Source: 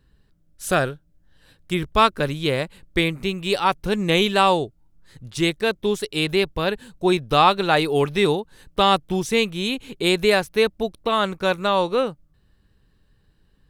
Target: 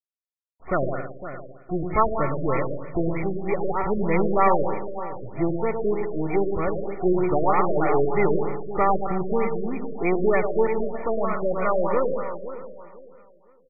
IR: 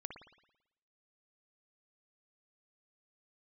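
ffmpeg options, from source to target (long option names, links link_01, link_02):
-filter_complex "[0:a]aeval=exprs='if(lt(val(0),0),0.447*val(0),val(0))':channel_layout=same,equalizer=frequency=5700:width_type=o:width=2.6:gain=3,asplit=2[link_01][link_02];[link_02]asetrate=88200,aresample=44100,atempo=0.5,volume=-12dB[link_03];[link_01][link_03]amix=inputs=2:normalize=0,acrusher=bits=6:mix=0:aa=0.000001,asuperstop=centerf=1600:order=20:qfactor=7.1,aecho=1:1:508|1016|1524:0.237|0.0664|0.0186,asplit=2[link_04][link_05];[1:a]atrim=start_sample=2205,adelay=108[link_06];[link_05][link_06]afir=irnorm=-1:irlink=0,volume=-1dB[link_07];[link_04][link_07]amix=inputs=2:normalize=0,afftfilt=real='re*lt(b*sr/1024,640*pow(2500/640,0.5+0.5*sin(2*PI*3.2*pts/sr)))':imag='im*lt(b*sr/1024,640*pow(2500/640,0.5+0.5*sin(2*PI*3.2*pts/sr)))':win_size=1024:overlap=0.75"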